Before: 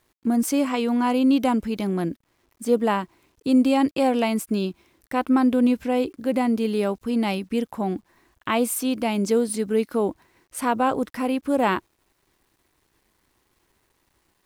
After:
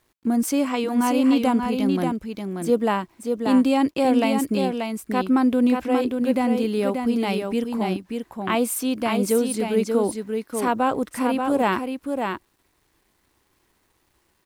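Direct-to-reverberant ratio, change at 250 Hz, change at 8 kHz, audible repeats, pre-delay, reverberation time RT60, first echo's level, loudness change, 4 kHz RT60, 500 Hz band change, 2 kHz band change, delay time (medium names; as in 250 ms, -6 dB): no reverb, +1.0 dB, +1.0 dB, 1, no reverb, no reverb, -5.0 dB, +0.5 dB, no reverb, +1.5 dB, +1.0 dB, 584 ms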